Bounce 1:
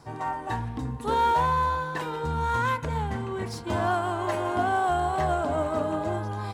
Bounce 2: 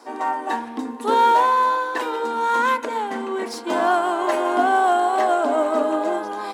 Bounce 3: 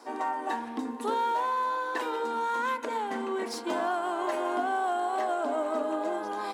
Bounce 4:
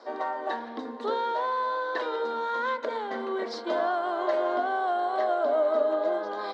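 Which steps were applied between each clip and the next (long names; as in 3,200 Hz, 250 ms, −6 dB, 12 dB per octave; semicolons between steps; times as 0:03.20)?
elliptic high-pass filter 240 Hz, stop band 40 dB; level +7.5 dB
downward compressor 3 to 1, threshold −24 dBFS, peak gain reduction 9 dB; level −4 dB
loudspeaker in its box 160–4,700 Hz, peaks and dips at 190 Hz −4 dB, 280 Hz −9 dB, 580 Hz +8 dB, 870 Hz −6 dB, 2,600 Hz −10 dB, 4,000 Hz +4 dB; level +2 dB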